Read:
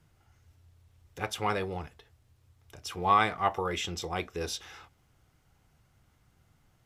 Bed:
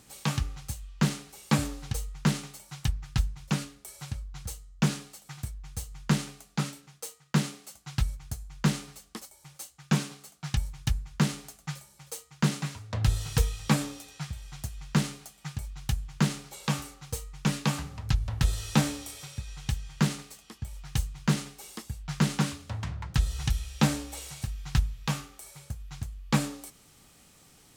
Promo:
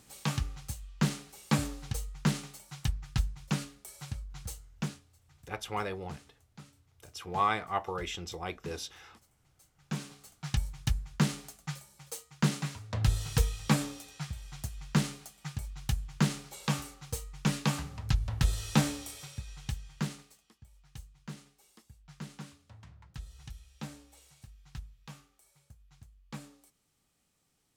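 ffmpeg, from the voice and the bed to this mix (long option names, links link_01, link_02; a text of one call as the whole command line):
ffmpeg -i stem1.wav -i stem2.wav -filter_complex "[0:a]adelay=4300,volume=-4.5dB[link_01];[1:a]volume=16.5dB,afade=type=out:start_time=4.57:duration=0.44:silence=0.11885,afade=type=in:start_time=9.7:duration=0.8:silence=0.105925,afade=type=out:start_time=19.06:duration=1.54:silence=0.149624[link_02];[link_01][link_02]amix=inputs=2:normalize=0" out.wav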